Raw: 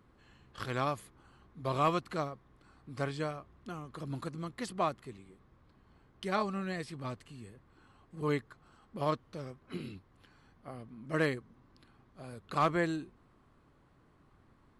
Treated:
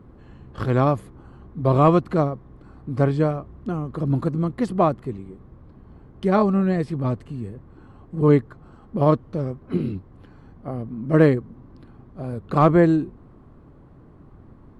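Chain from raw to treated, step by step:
tilt shelving filter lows +10 dB, about 1,200 Hz
level +8.5 dB

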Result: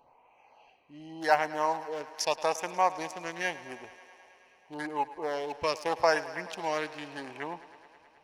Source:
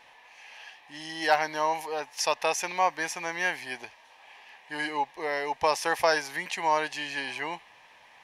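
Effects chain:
adaptive Wiener filter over 25 samples
auto-filter notch sine 0.84 Hz 800–4,800 Hz
feedback echo with a high-pass in the loop 107 ms, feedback 81%, high-pass 190 Hz, level −17 dB

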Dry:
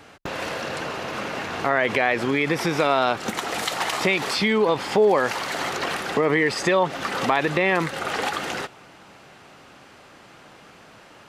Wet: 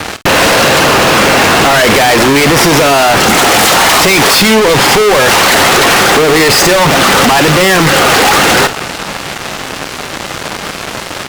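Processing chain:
fuzz pedal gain 44 dB, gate −46 dBFS
double-tracking delay 50 ms −14 dB
level +7 dB

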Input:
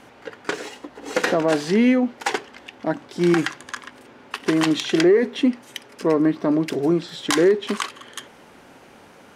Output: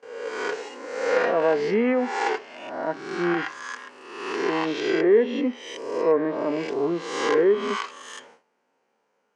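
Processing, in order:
peak hold with a rise ahead of every peak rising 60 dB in 1.03 s
noise gate with hold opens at −32 dBFS
treble cut that deepens with the level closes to 2,500 Hz, closed at −12 dBFS
harmonic and percussive parts rebalanced percussive −10 dB
loudspeaker in its box 270–8,200 Hz, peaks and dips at 310 Hz −6 dB, 460 Hz +6 dB, 940 Hz +4 dB, 3,600 Hz −6 dB
level −3 dB

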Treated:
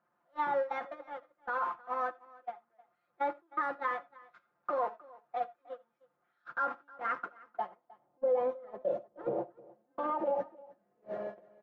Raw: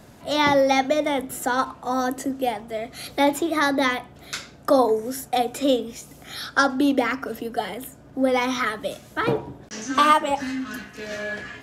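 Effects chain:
converter with a step at zero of −21 dBFS
band-pass filter sweep 1,300 Hz → 590 Hz, 0:07.35–0:08.43
noise gate −27 dBFS, range −36 dB
tilt shelving filter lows +8 dB, about 1,300 Hz
brickwall limiter −17.5 dBFS, peak gain reduction 9.5 dB
high-shelf EQ 5,800 Hz −10 dB
comb filter 5.7 ms, depth 73%
single-tap delay 310 ms −22 dB
convolution reverb, pre-delay 25 ms, DRR 19.5 dB
level −8 dB

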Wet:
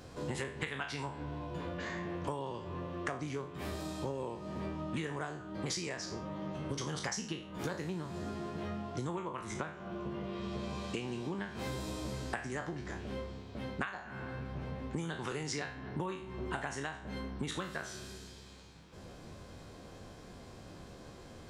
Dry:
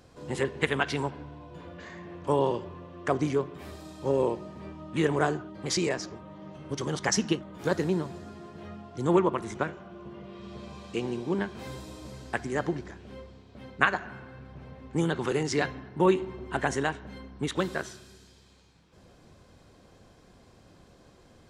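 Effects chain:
peak hold with a decay on every bin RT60 0.35 s
dynamic equaliser 410 Hz, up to −6 dB, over −37 dBFS, Q 0.87
downward compressor 20 to 1, threshold −38 dBFS, peak gain reduction 22.5 dB
level +4 dB

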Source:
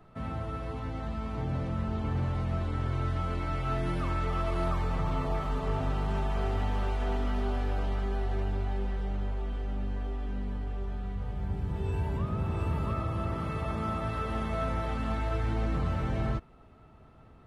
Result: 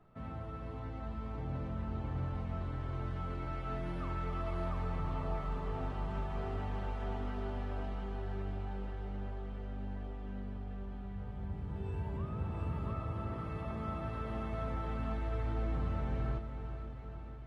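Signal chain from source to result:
high-shelf EQ 4,000 Hz −9 dB
on a send: feedback delay with all-pass diffusion 462 ms, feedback 67%, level −9.5 dB
on the sum: level −7.5 dB

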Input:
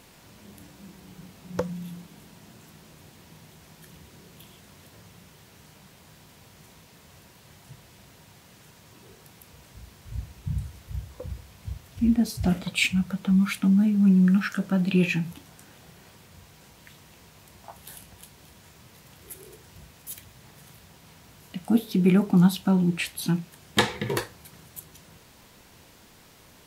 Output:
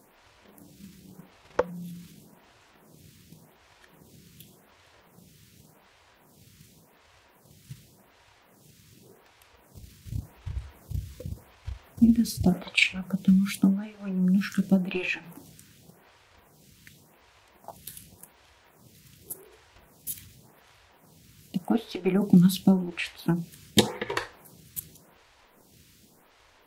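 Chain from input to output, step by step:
surface crackle 120 per second −55 dBFS
transient designer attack +9 dB, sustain +5 dB
phaser with staggered stages 0.88 Hz
level −2.5 dB

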